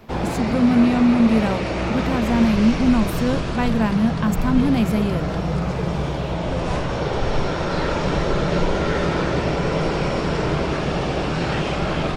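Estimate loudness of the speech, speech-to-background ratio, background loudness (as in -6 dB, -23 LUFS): -20.0 LUFS, 3.5 dB, -23.5 LUFS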